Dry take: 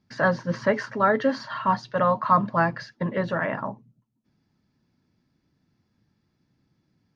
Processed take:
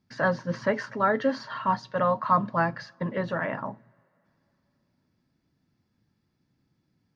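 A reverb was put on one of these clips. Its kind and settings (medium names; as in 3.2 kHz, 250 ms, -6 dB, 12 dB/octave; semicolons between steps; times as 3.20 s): two-slope reverb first 0.26 s, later 3.4 s, from -22 dB, DRR 19.5 dB; trim -3 dB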